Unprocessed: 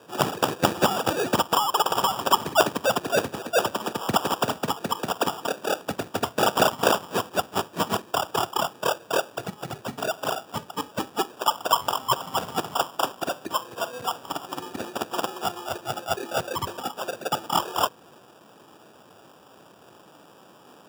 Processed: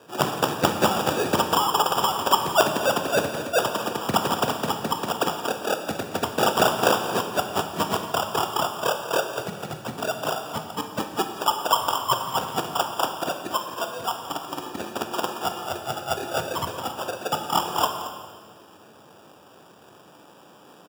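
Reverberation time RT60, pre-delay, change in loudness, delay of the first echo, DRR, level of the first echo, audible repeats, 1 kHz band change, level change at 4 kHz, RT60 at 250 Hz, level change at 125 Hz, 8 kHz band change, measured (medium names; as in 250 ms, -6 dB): 1.7 s, 13 ms, +1.0 dB, 172 ms, 5.0 dB, -18.5 dB, 2, +1.5 dB, +1.0 dB, 2.1 s, +1.5 dB, +1.0 dB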